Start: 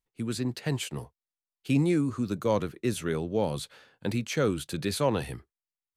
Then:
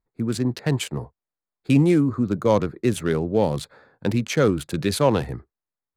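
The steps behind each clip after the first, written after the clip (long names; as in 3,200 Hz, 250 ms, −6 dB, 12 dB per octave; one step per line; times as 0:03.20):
adaptive Wiener filter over 15 samples
level +7.5 dB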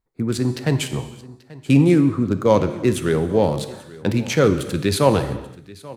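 single-tap delay 835 ms −20.5 dB
reverb whose tail is shaped and stops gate 400 ms falling, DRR 8.5 dB
level +2.5 dB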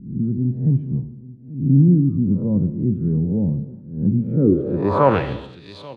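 peak hold with a rise ahead of every peak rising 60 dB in 0.56 s
low-pass filter sweep 190 Hz → 3,600 Hz, 0:04.32–0:05.35
level −2 dB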